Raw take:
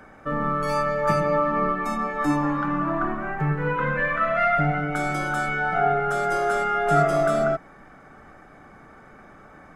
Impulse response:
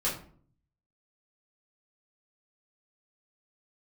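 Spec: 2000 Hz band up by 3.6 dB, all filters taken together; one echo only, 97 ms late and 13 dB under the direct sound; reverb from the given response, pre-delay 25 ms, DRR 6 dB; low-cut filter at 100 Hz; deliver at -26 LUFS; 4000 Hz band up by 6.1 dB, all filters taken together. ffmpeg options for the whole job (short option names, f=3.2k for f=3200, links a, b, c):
-filter_complex "[0:a]highpass=100,equalizer=f=2k:t=o:g=3.5,equalizer=f=4k:t=o:g=7,aecho=1:1:97:0.224,asplit=2[a][b];[1:a]atrim=start_sample=2205,adelay=25[c];[b][c]afir=irnorm=-1:irlink=0,volume=-13.5dB[d];[a][d]amix=inputs=2:normalize=0,volume=-5.5dB"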